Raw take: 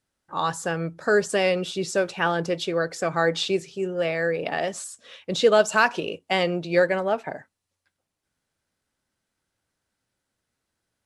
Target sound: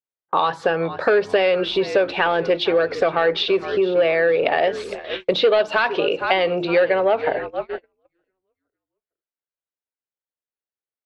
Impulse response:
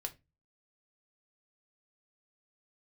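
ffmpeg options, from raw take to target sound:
-filter_complex "[0:a]bandreject=frequency=50:width_type=h:width=6,bandreject=frequency=100:width_type=h:width=6,bandreject=frequency=150:width_type=h:width=6,bandreject=frequency=200:width_type=h:width=6,bandreject=frequency=250:width_type=h:width=6,bandreject=frequency=300:width_type=h:width=6,bandreject=frequency=350:width_type=h:width=6,asplit=2[link_01][link_02];[link_02]asplit=4[link_03][link_04][link_05][link_06];[link_03]adelay=459,afreqshift=-64,volume=-19dB[link_07];[link_04]adelay=918,afreqshift=-128,volume=-25.4dB[link_08];[link_05]adelay=1377,afreqshift=-192,volume=-31.8dB[link_09];[link_06]adelay=1836,afreqshift=-256,volume=-38.1dB[link_10];[link_07][link_08][link_09][link_10]amix=inputs=4:normalize=0[link_11];[link_01][link_11]amix=inputs=2:normalize=0,agate=range=-38dB:threshold=-41dB:ratio=16:detection=peak,acrossover=split=2300[link_12][link_13];[link_12]asoftclip=type=tanh:threshold=-16.5dB[link_14];[link_14][link_13]amix=inputs=2:normalize=0,acompressor=threshold=-34dB:ratio=5,firequalizer=gain_entry='entry(190,0);entry(420,12);entry(1400,8);entry(2200,10);entry(4100,6);entry(7200,-20)':delay=0.05:min_phase=1,volume=7.5dB"

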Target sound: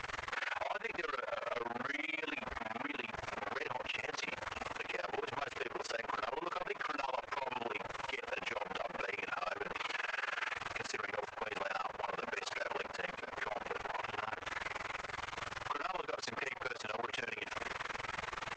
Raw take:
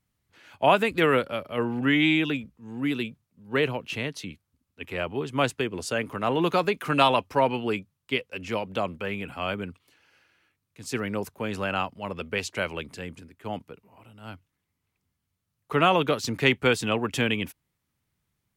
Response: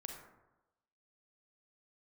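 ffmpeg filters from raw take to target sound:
-filter_complex "[0:a]aeval=exprs='val(0)+0.5*0.0355*sgn(val(0))':channel_layout=same,asettb=1/sr,asplit=3[link_01][link_02][link_03];[link_01]atrim=end=11.264[link_04];[link_02]atrim=start=11.26:end=13.34,asetpts=PTS-STARTPTS,afade=type=in:duration=0.004:curve=qsin,afade=type=out:start_time=2.076:duration=0.004:curve=qsin,agate=range=-33dB:threshold=-28dB:ratio=3:detection=peak[link_05];[link_03]atrim=start=13.336[link_06];[link_04][link_05]acrossfade=duration=0.004:curve1=hsin:curve2=qsin[link_07];[link_07][link_06]acrossfade=duration=0.004:curve1=qsin:curve2=hsin,acompressor=threshold=-27dB:ratio=6,acrossover=split=450 2200:gain=0.141 1 0.141[link_08][link_09][link_10];[link_08][link_09][link_10]amix=inputs=3:normalize=0,asoftclip=type=hard:threshold=-31dB,equalizer=frequency=190:width=0.37:gain=-10,asplit=2[link_11][link_12];[link_12]adelay=17,volume=-2.5dB[link_13];[link_11][link_13]amix=inputs=2:normalize=0,asplit=2[link_14][link_15];[link_15]adelay=638,lowpass=frequency=3600:poles=1,volume=-14.5dB,asplit=2[link_16][link_17];[link_17]adelay=638,lowpass=frequency=3600:poles=1,volume=0.55,asplit=2[link_18][link_19];[link_19]adelay=638,lowpass=frequency=3600:poles=1,volume=0.55,asplit=2[link_20][link_21];[link_21]adelay=638,lowpass=frequency=3600:poles=1,volume=0.55,asplit=2[link_22][link_23];[link_23]adelay=638,lowpass=frequency=3600:poles=1,volume=0.55[link_24];[link_14][link_16][link_18][link_20][link_22][link_24]amix=inputs=6:normalize=0,tremolo=f=21:d=1,alimiter=level_in=13dB:limit=-24dB:level=0:latency=1:release=141,volume=-13dB,aresample=16000,aresample=44100,volume=9dB" -ar 22050 -c:a nellymoser

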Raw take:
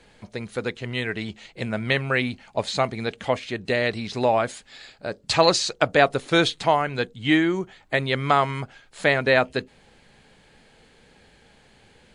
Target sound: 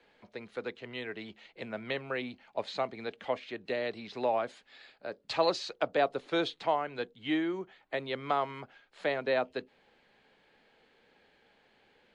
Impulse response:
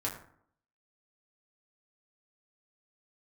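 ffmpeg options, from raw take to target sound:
-filter_complex "[0:a]acrossover=split=240 4500:gain=0.2 1 0.112[link_01][link_02][link_03];[link_01][link_02][link_03]amix=inputs=3:normalize=0,acrossover=split=210|1300|2700[link_04][link_05][link_06][link_07];[link_06]acompressor=threshold=-39dB:ratio=6[link_08];[link_04][link_05][link_08][link_07]amix=inputs=4:normalize=0,volume=-8.5dB"

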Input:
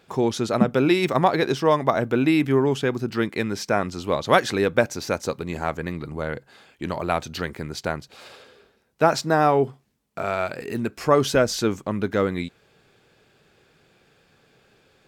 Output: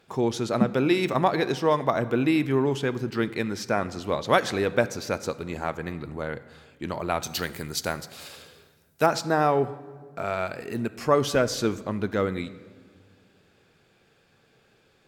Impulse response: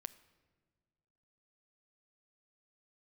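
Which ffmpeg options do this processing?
-filter_complex "[0:a]asettb=1/sr,asplit=3[link_01][link_02][link_03];[link_01]atrim=end=7.234[link_04];[link_02]atrim=start=7.23:end=9.06,asetpts=PTS-STARTPTS,afade=type=in:duration=0.004:curve=qsin,afade=type=out:start_time=1.826:duration=0.004:curve=qsin,aemphasis=mode=production:type=75kf[link_05];[link_03]atrim=start=9.056[link_06];[link_04][link_05]acrossfade=duration=0.004:curve1=hsin:curve2=qsin[link_07];[link_07][link_06]acrossfade=duration=0.004:curve1=qsin:curve2=hsin[link_08];[1:a]atrim=start_sample=2205,asetrate=35280,aresample=44100[link_09];[link_08][link_09]afir=irnorm=-1:irlink=0"

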